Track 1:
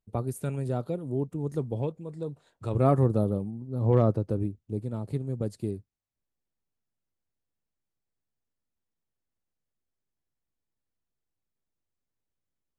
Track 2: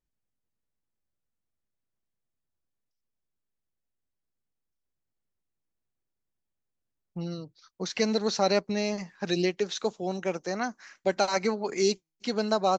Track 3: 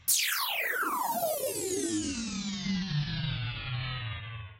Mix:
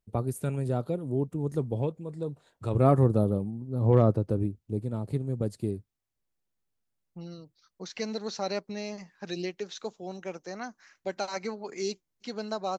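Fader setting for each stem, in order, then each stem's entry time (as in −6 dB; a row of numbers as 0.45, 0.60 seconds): +1.0 dB, −7.5 dB, muted; 0.00 s, 0.00 s, muted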